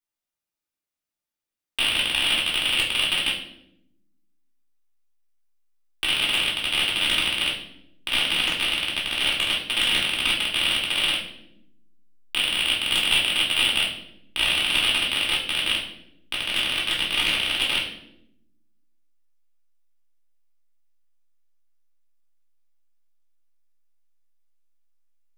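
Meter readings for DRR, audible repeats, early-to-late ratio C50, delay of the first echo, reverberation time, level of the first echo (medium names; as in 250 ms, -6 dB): -4.5 dB, no echo, 5.5 dB, no echo, 0.80 s, no echo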